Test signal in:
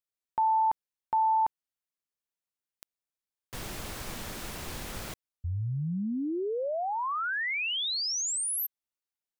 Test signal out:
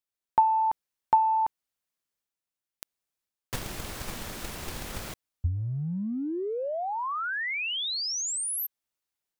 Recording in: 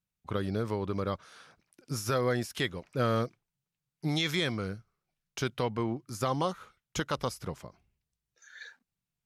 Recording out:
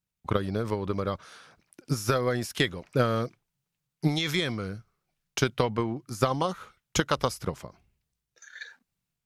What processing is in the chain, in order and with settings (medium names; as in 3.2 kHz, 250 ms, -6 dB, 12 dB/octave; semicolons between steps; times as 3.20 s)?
transient shaper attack +9 dB, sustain +5 dB